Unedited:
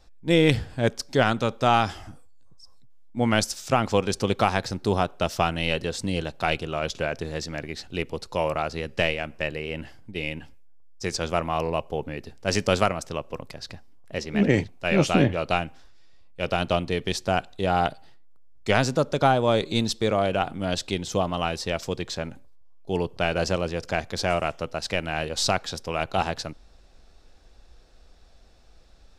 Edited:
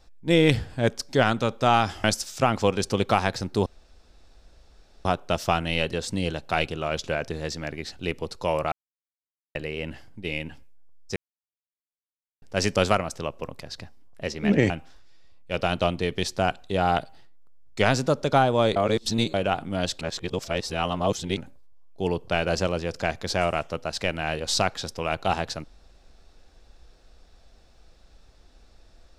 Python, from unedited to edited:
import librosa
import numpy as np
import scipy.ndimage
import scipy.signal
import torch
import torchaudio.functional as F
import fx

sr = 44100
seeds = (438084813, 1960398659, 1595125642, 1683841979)

y = fx.edit(x, sr, fx.cut(start_s=2.04, length_s=1.3),
    fx.insert_room_tone(at_s=4.96, length_s=1.39),
    fx.silence(start_s=8.63, length_s=0.83),
    fx.silence(start_s=11.07, length_s=1.26),
    fx.cut(start_s=14.61, length_s=0.98),
    fx.reverse_span(start_s=19.65, length_s=0.58),
    fx.reverse_span(start_s=20.9, length_s=1.36), tone=tone)